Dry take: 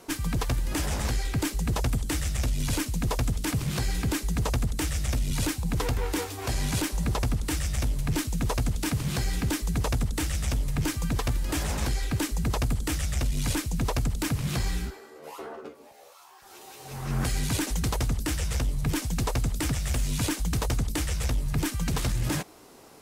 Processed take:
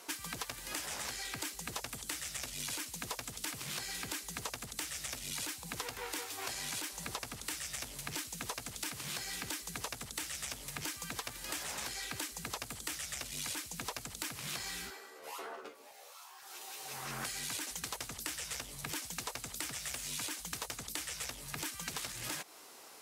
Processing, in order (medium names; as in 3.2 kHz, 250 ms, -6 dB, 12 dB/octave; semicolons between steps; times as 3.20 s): high-pass 1.4 kHz 6 dB/octave; compression, threshold -39 dBFS, peak gain reduction 10 dB; trim +2 dB